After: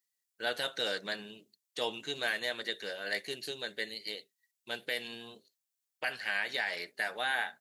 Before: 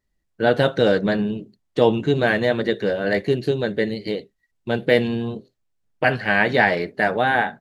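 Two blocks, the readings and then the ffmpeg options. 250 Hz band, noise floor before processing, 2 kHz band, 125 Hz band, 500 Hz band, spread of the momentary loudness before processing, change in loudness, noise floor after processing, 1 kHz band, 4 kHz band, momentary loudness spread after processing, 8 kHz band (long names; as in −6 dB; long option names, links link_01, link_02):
−26.5 dB, −73 dBFS, −11.5 dB, −31.5 dB, −20.5 dB, 10 LU, −14.5 dB, below −85 dBFS, −17.0 dB, −4.5 dB, 11 LU, can't be measured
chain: -af "aderivative,alimiter=limit=-23.5dB:level=0:latency=1:release=169,volume=3dB"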